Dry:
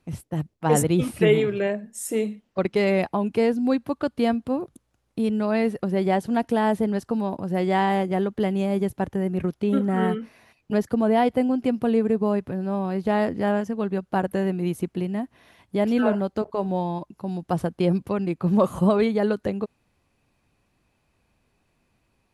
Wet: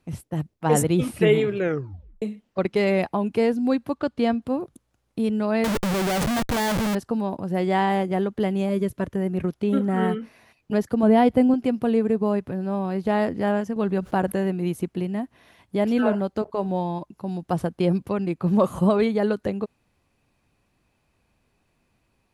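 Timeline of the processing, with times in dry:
1.58 tape stop 0.64 s
3.94–4.42 LPF 7500 Hz
5.64–6.95 Schmitt trigger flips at -40 dBFS
8.69–9.16 Butterworth band-stop 810 Hz, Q 3.7
11.03–11.54 low shelf 290 Hz +8.5 dB
13.76–14.32 fast leveller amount 50%

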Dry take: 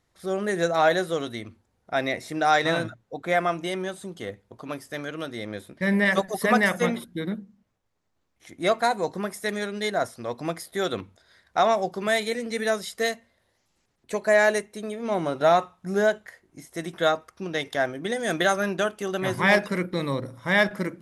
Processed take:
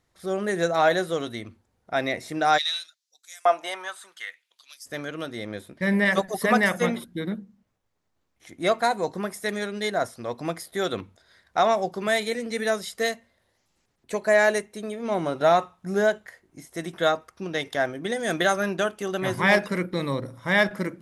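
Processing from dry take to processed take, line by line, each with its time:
2.57–4.85 LFO high-pass saw up 0.27 Hz -> 0.93 Hz 620–7500 Hz

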